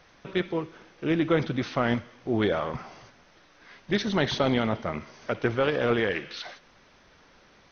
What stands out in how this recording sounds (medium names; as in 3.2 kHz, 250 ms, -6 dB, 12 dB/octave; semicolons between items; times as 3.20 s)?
a quantiser's noise floor 10-bit, dither triangular; MP2